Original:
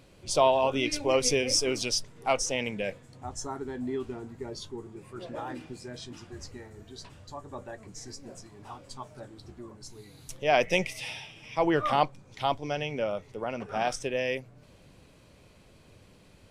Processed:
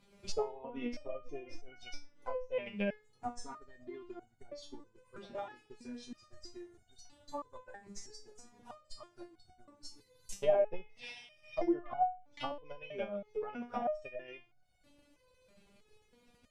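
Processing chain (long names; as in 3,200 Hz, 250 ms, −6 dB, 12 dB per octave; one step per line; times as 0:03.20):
transient designer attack +11 dB, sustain −5 dB
treble cut that deepens with the level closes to 740 Hz, closed at −19.5 dBFS
step-sequenced resonator 3.1 Hz 200–740 Hz
level +4 dB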